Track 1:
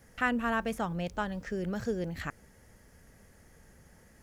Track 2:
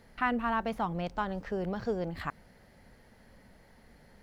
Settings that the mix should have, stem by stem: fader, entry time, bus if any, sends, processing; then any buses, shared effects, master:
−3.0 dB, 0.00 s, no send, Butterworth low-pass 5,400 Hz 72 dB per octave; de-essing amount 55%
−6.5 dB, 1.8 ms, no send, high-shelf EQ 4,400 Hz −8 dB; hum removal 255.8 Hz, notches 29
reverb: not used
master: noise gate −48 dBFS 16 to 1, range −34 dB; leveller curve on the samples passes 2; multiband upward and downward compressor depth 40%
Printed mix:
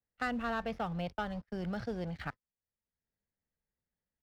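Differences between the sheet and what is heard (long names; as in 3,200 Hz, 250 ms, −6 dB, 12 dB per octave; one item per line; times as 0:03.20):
stem 1 −3.0 dB → −10.5 dB
stem 2 −6.5 dB → −18.0 dB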